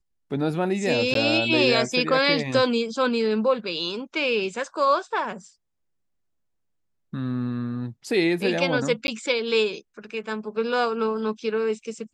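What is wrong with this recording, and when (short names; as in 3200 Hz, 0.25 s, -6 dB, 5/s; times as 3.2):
1.14–1.15 gap 13 ms
9.07–9.08 gap 11 ms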